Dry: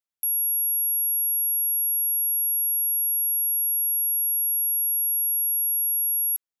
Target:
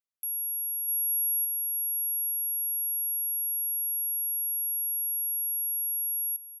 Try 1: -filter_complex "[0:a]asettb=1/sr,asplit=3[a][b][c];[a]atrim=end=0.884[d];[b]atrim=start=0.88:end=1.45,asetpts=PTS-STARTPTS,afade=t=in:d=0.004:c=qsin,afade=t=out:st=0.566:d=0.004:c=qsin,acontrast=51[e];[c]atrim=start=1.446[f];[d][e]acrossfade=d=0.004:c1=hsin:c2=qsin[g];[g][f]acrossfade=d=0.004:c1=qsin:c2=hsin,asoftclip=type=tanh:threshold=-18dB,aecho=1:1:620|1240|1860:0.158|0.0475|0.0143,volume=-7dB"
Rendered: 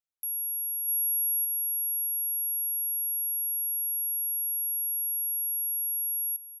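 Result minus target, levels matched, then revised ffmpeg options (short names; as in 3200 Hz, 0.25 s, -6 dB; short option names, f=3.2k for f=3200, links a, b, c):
echo 0.24 s early
-filter_complex "[0:a]asettb=1/sr,asplit=3[a][b][c];[a]atrim=end=0.884[d];[b]atrim=start=0.88:end=1.45,asetpts=PTS-STARTPTS,afade=t=in:d=0.004:c=qsin,afade=t=out:st=0.566:d=0.004:c=qsin,acontrast=51[e];[c]atrim=start=1.446[f];[d][e]acrossfade=d=0.004:c1=hsin:c2=qsin[g];[g][f]acrossfade=d=0.004:c1=qsin:c2=hsin,asoftclip=type=tanh:threshold=-18dB,aecho=1:1:860|1720|2580:0.158|0.0475|0.0143,volume=-7dB"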